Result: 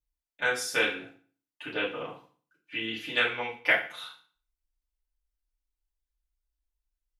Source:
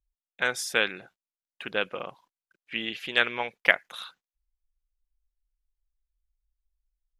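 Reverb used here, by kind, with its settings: FDN reverb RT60 0.42 s, low-frequency decay 1.2×, high-frequency decay 0.95×, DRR -6.5 dB; trim -8.5 dB

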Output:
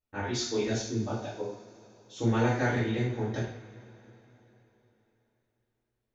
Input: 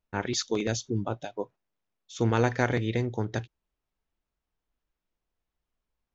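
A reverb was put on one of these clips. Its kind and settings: two-slope reverb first 0.56 s, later 3.8 s, from -21 dB, DRR -9 dB; trim -11.5 dB

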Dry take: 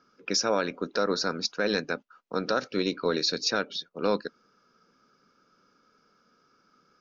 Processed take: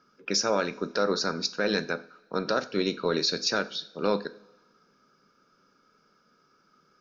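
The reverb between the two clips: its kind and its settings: two-slope reverb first 0.39 s, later 1.6 s, from -19 dB, DRR 10.5 dB

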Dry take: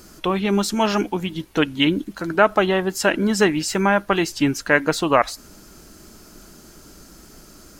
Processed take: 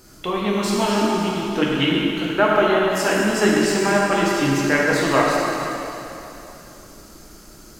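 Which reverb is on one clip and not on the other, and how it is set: plate-style reverb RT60 3.1 s, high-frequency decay 0.95×, DRR -5 dB; trim -5 dB

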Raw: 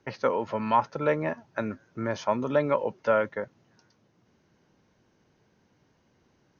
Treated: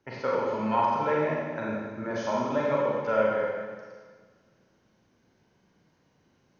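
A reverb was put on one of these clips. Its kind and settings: Schroeder reverb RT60 1.6 s, combs from 33 ms, DRR -5 dB; trim -6 dB

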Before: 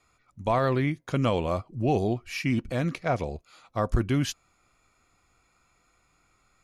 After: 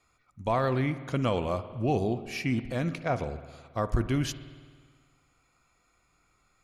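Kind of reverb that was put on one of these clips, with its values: spring tank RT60 1.7 s, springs 54 ms, chirp 20 ms, DRR 12 dB; trim -2.5 dB

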